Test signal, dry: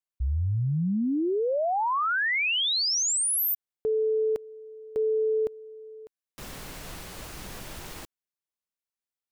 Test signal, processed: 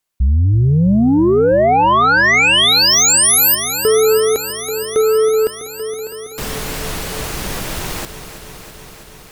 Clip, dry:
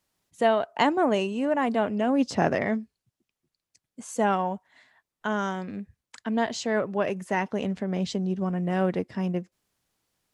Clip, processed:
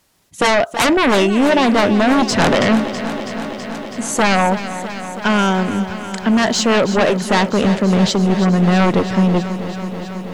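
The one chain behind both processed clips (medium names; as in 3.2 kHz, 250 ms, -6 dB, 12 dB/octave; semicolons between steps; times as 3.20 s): sine folder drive 14 dB, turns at -8.5 dBFS; bit-crushed delay 326 ms, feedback 80%, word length 8-bit, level -12 dB; trim -1.5 dB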